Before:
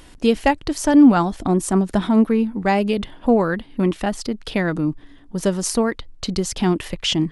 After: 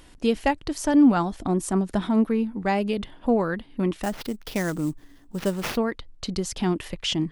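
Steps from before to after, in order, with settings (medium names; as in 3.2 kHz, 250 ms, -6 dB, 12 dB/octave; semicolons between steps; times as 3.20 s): 4.03–5.77 s: sample-rate reducer 8.2 kHz, jitter 20%; trim -5.5 dB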